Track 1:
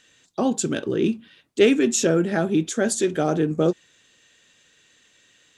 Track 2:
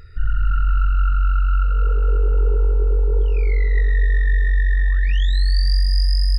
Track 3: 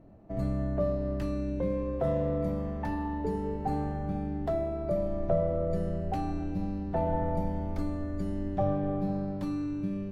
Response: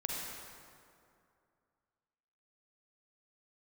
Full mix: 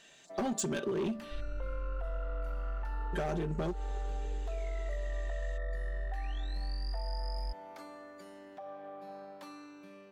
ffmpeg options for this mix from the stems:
-filter_complex "[0:a]aecho=1:1:5.1:0.76,acompressor=threshold=-18dB:ratio=4,volume=20dB,asoftclip=hard,volume=-20dB,volume=-3dB,asplit=3[a][b][c];[a]atrim=end=1.41,asetpts=PTS-STARTPTS,afade=t=out:st=1.406:d=0.004:c=hsin[d];[b]atrim=start=1.41:end=3.13,asetpts=PTS-STARTPTS,volume=0[e];[c]atrim=start=3.13,asetpts=PTS-STARTPTS,afade=t=in:d=0.004:c=hsin[f];[d][e][f]concat=n=3:v=0:a=1[g];[1:a]adelay=1150,volume=-19dB[h];[2:a]highpass=790,alimiter=level_in=11.5dB:limit=-24dB:level=0:latency=1:release=321,volume=-11.5dB,volume=-1.5dB[i];[g][h][i]amix=inputs=3:normalize=0,acompressor=threshold=-31dB:ratio=5"

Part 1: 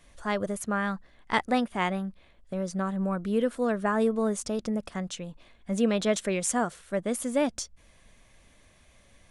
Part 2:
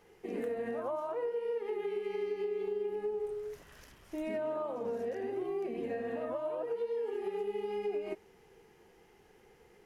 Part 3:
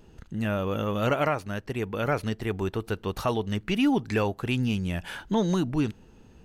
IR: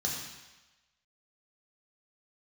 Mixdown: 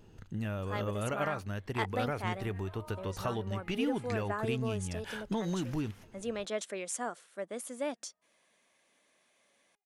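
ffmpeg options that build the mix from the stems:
-filter_complex "[0:a]highpass=300,adelay=450,volume=-8.5dB[a];[1:a]acompressor=threshold=-44dB:ratio=6,highpass=f=760:w=0.5412,highpass=f=760:w=1.3066,adelay=1900,volume=0.5dB[b];[2:a]equalizer=f=94:w=2.4:g=14,acompressor=threshold=-25dB:ratio=6,volume=-4dB,asplit=2[c][d];[d]apad=whole_len=518205[e];[b][e]sidechaingate=range=-33dB:threshold=-47dB:ratio=16:detection=peak[f];[a][f][c]amix=inputs=3:normalize=0,equalizer=f=73:w=1.4:g=-11.5"

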